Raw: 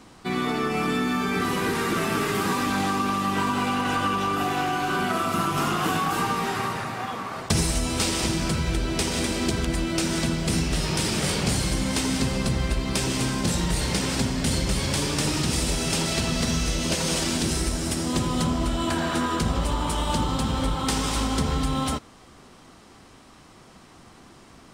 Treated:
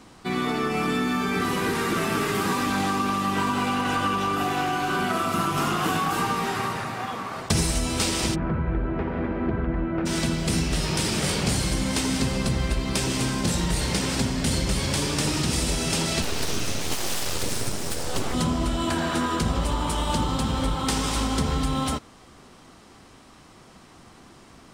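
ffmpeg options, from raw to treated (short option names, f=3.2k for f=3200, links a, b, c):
-filter_complex "[0:a]asplit=3[a][b][c];[a]afade=t=out:st=8.34:d=0.02[d];[b]lowpass=f=1.7k:w=0.5412,lowpass=f=1.7k:w=1.3066,afade=t=in:st=8.34:d=0.02,afade=t=out:st=10.05:d=0.02[e];[c]afade=t=in:st=10.05:d=0.02[f];[d][e][f]amix=inputs=3:normalize=0,asettb=1/sr,asplit=3[g][h][i];[g]atrim=end=16.224[j];[h]atrim=start=16.22:end=18.34,asetpts=PTS-STARTPTS,afade=t=in:d=0.004:c=qsin,afade=t=out:st=2.116:d=0.004:c=qsin,aeval=exprs='abs(val(0))':c=same[k];[i]atrim=start=18.336[l];[j][k]acrossfade=d=0.004:c1=hsin:c2=qsin[m];[m][l]acrossfade=d=0.004:c1=qsin:c2=hsin"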